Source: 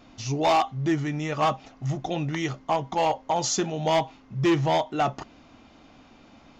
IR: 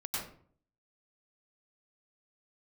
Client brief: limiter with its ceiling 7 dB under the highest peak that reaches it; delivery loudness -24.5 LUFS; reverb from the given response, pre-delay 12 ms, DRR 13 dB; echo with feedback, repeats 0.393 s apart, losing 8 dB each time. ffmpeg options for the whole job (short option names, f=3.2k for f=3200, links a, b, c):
-filter_complex "[0:a]alimiter=limit=-23dB:level=0:latency=1,aecho=1:1:393|786|1179|1572|1965:0.398|0.159|0.0637|0.0255|0.0102,asplit=2[a][b];[1:a]atrim=start_sample=2205,adelay=12[c];[b][c]afir=irnorm=-1:irlink=0,volume=-16dB[d];[a][d]amix=inputs=2:normalize=0,volume=5.5dB"